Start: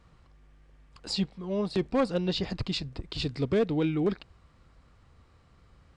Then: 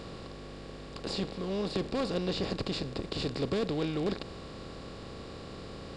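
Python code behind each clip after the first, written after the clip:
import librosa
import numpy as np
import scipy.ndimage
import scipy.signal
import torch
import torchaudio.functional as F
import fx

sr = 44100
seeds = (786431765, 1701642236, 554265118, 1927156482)

y = fx.bin_compress(x, sr, power=0.4)
y = y * librosa.db_to_amplitude(-8.5)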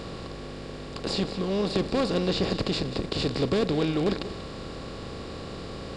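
y = x + 10.0 ** (-13.0 / 20.0) * np.pad(x, (int(188 * sr / 1000.0), 0))[:len(x)]
y = y * librosa.db_to_amplitude(6.0)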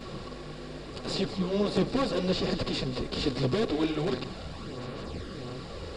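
y = fx.chorus_voices(x, sr, voices=4, hz=0.75, base_ms=12, depth_ms=4.2, mix_pct=70)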